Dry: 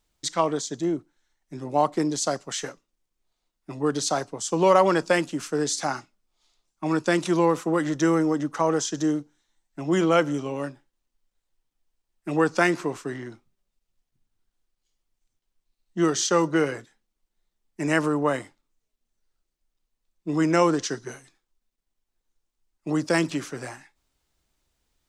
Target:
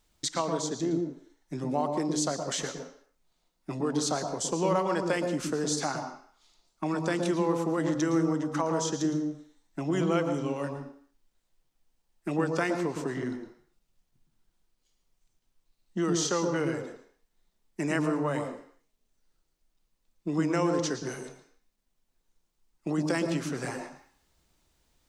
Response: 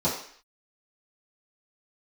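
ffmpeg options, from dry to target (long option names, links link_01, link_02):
-filter_complex "[0:a]acompressor=threshold=-35dB:ratio=2.5,asplit=2[link_01][link_02];[1:a]atrim=start_sample=2205,adelay=111[link_03];[link_02][link_03]afir=irnorm=-1:irlink=0,volume=-19dB[link_04];[link_01][link_04]amix=inputs=2:normalize=0,volume=3.5dB"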